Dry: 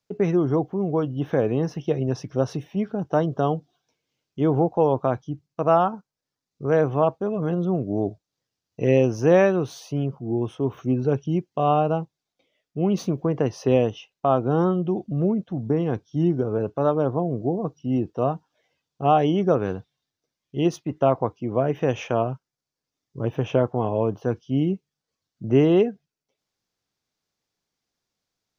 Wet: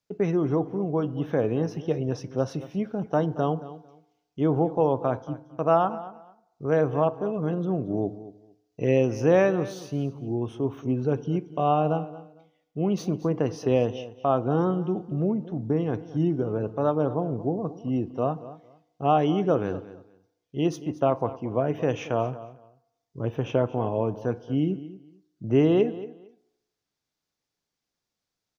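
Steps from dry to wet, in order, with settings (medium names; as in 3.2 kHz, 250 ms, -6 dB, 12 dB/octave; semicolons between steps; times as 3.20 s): feedback delay 227 ms, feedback 20%, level -16.5 dB; FDN reverb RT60 0.96 s, low-frequency decay 0.8×, high-frequency decay 0.5×, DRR 16 dB; trim -3 dB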